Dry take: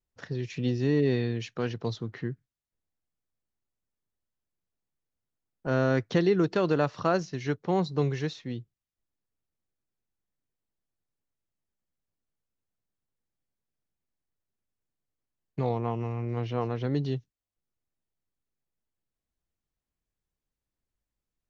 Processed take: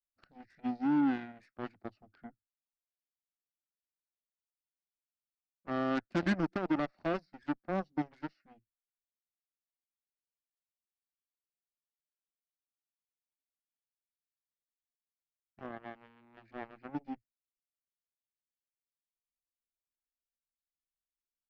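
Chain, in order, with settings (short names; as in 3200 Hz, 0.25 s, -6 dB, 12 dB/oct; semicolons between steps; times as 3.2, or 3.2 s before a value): formant shift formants -4 st; fixed phaser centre 660 Hz, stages 8; added harmonics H 5 -37 dB, 7 -15 dB, 8 -36 dB, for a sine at -17 dBFS; gain -3.5 dB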